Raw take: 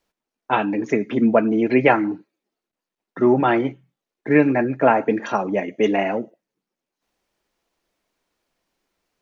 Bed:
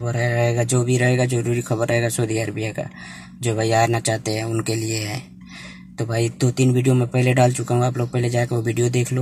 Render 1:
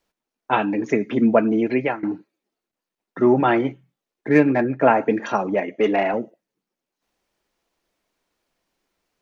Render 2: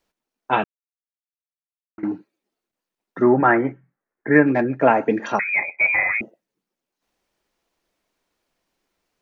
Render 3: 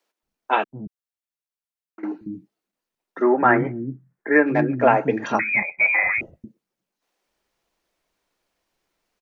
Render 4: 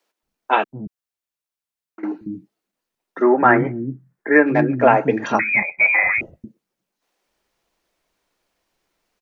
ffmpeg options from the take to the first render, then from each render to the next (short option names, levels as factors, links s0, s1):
-filter_complex "[0:a]asettb=1/sr,asplit=3[s0][s1][s2];[s0]atrim=end=4.284[s3];[s1]atrim=start=4.28:end=4.8,asetpts=PTS-STARTPTS,afade=t=in:d=0.004:c=qsin,afade=t=out:st=0.516:d=0.004:c=qsin,adynamicsmooth=sensitivity=1:basefreq=3800[s4];[s2]atrim=start=4.796[s5];[s3][s4]acrossfade=d=0.004:c1=hsin:c2=qsin[s6];[s6][s5]acrossfade=d=0.004:c1=qsin:c2=hsin,asettb=1/sr,asplit=3[s7][s8][s9];[s7]atrim=end=5.544[s10];[s8]atrim=start=5.54:end=6.14,asetpts=PTS-STARTPTS,afade=t=in:d=0.004:c=qsin,afade=t=out:st=0.596:d=0.004:c=qsin,asplit=2[s11][s12];[s12]highpass=f=720:p=1,volume=3.16,asoftclip=type=tanh:threshold=0.447[s13];[s11][s13]amix=inputs=2:normalize=0,lowpass=f=1500:p=1,volume=0.501[s14];[s9]atrim=start=6.136[s15];[s10][s14]acrossfade=d=0.004:c1=hsin:c2=qsin[s16];[s16][s15]acrossfade=d=0.004:c1=qsin:c2=hsin,asplit=2[s17][s18];[s17]atrim=end=2.03,asetpts=PTS-STARTPTS,afade=t=out:st=1.55:d=0.48:silence=0.112202[s19];[s18]atrim=start=2.03,asetpts=PTS-STARTPTS,afade=t=in:d=0.004:c=hsin:silence=0.112202[s20];[s19][s20]concat=n=2:v=0:a=1"
-filter_complex "[0:a]asettb=1/sr,asplit=3[s0][s1][s2];[s0]atrim=end=3.224[s3];[s1]atrim=start=3.22:end=4.47,asetpts=PTS-STARTPTS,afade=t=in:d=0.004:c=qsin,afade=t=out:st=1.246:d=0.004:c=qsin,highshelf=f=2400:t=q:w=3:g=-11.5[s4];[s2]atrim=start=4.466[s5];[s3][s4]acrossfade=d=0.004:c1=hsin:c2=qsin[s6];[s6][s5]acrossfade=d=0.004:c1=qsin:c2=hsin,asettb=1/sr,asplit=3[s7][s8][s9];[s7]atrim=end=5.394[s10];[s8]atrim=start=5.39:end=6.21,asetpts=PTS-STARTPTS,afade=t=in:d=0.004:c=qsin,afade=t=out:st=0.816:d=0.004:c=qsin,lowpass=f=2300:t=q:w=0.5098,lowpass=f=2300:t=q:w=0.6013,lowpass=f=2300:t=q:w=0.9,lowpass=f=2300:t=q:w=2.563,afreqshift=-2700[s11];[s9]atrim=start=6.206[s12];[s10][s11]acrossfade=d=0.004:c1=hsin:c2=qsin[s13];[s13][s12]acrossfade=d=0.004:c1=qsin:c2=hsin,asplit=3[s14][s15][s16];[s14]atrim=end=0.64,asetpts=PTS-STARTPTS,afade=t=out:st=0.636:d=0.004:c=hsin[s17];[s15]atrim=start=0.64:end=1.98,asetpts=PTS-STARTPTS,volume=0[s18];[s16]atrim=start=1.98,asetpts=PTS-STARTPTS,afade=t=in:d=0.004:c=hsin[s19];[s17][s18][s19]concat=n=3:v=0:a=1"
-filter_complex "[0:a]acrossover=split=260[s0][s1];[s0]adelay=230[s2];[s2][s1]amix=inputs=2:normalize=0"
-af "volume=1.41,alimiter=limit=0.891:level=0:latency=1"